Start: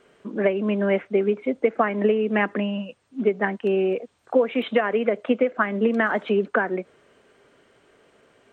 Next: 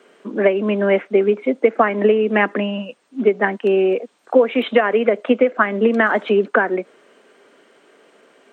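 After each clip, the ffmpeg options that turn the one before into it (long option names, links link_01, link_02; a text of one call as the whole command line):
ffmpeg -i in.wav -af "highpass=frequency=210:width=0.5412,highpass=frequency=210:width=1.3066,volume=6dB" out.wav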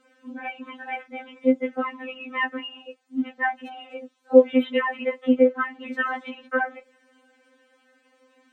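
ffmpeg -i in.wav -af "afftfilt=real='re*3.46*eq(mod(b,12),0)':imag='im*3.46*eq(mod(b,12),0)':win_size=2048:overlap=0.75,volume=-6dB" out.wav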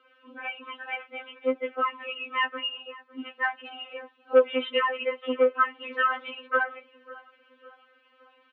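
ffmpeg -i in.wav -filter_complex "[0:a]acontrast=43,highpass=frequency=370:width=0.5412,highpass=frequency=370:width=1.3066,equalizer=frequency=400:width_type=q:width=4:gain=4,equalizer=frequency=560:width_type=q:width=4:gain=-4,equalizer=frequency=810:width_type=q:width=4:gain=-8,equalizer=frequency=1200:width_type=q:width=4:gain=9,equalizer=frequency=1900:width_type=q:width=4:gain=-4,equalizer=frequency=2900:width_type=q:width=4:gain=7,lowpass=frequency=3400:width=0.5412,lowpass=frequency=3400:width=1.3066,asplit=2[link_01][link_02];[link_02]adelay=554,lowpass=frequency=1700:poles=1,volume=-19dB,asplit=2[link_03][link_04];[link_04]adelay=554,lowpass=frequency=1700:poles=1,volume=0.53,asplit=2[link_05][link_06];[link_06]adelay=554,lowpass=frequency=1700:poles=1,volume=0.53,asplit=2[link_07][link_08];[link_08]adelay=554,lowpass=frequency=1700:poles=1,volume=0.53[link_09];[link_01][link_03][link_05][link_07][link_09]amix=inputs=5:normalize=0,volume=-5.5dB" out.wav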